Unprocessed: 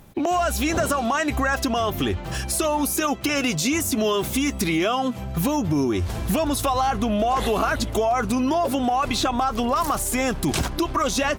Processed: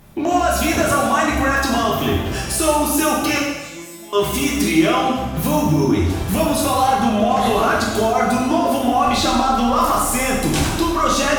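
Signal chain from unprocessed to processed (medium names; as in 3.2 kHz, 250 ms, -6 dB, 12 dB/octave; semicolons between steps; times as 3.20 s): 3.38–4.13 s: feedback comb 170 Hz, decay 0.88 s, harmonics all, mix 100%; plate-style reverb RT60 1.2 s, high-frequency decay 0.95×, DRR -4.5 dB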